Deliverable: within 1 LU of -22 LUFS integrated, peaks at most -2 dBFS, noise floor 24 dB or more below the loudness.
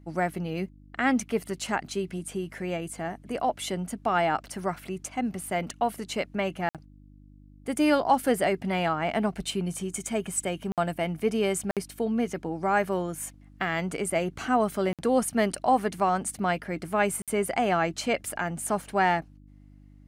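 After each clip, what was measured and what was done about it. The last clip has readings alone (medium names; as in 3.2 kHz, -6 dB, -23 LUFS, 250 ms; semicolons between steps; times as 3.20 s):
dropouts 5; longest dropout 57 ms; hum 50 Hz; highest harmonic 300 Hz; hum level -48 dBFS; loudness -28.0 LUFS; peak level -11.0 dBFS; loudness target -22.0 LUFS
-> interpolate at 6.69/10.72/11.71/14.93/17.22 s, 57 ms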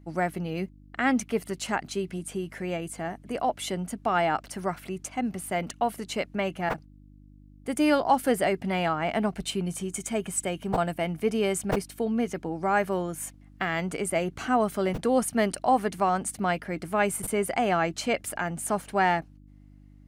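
dropouts 0; hum 50 Hz; highest harmonic 300 Hz; hum level -48 dBFS
-> de-hum 50 Hz, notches 6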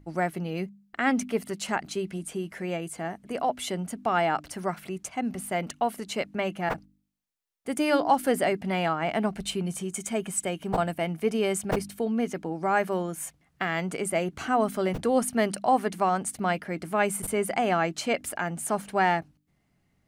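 hum not found; loudness -28.5 LUFS; peak level -11.0 dBFS; loudness target -22.0 LUFS
-> trim +6.5 dB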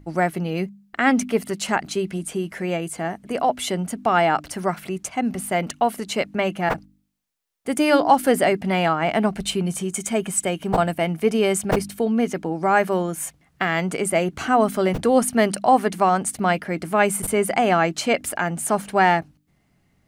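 loudness -22.0 LUFS; peak level -4.5 dBFS; noise floor -64 dBFS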